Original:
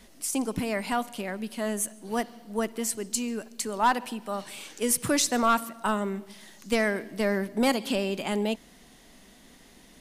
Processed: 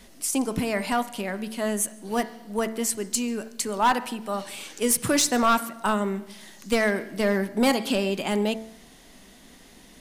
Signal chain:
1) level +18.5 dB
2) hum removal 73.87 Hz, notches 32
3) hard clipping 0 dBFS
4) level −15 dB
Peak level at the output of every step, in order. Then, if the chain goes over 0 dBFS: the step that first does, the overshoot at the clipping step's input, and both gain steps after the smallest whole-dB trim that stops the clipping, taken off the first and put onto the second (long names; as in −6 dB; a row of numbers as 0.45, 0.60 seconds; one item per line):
+4.0, +5.0, 0.0, −15.0 dBFS
step 1, 5.0 dB
step 1 +13.5 dB, step 4 −10 dB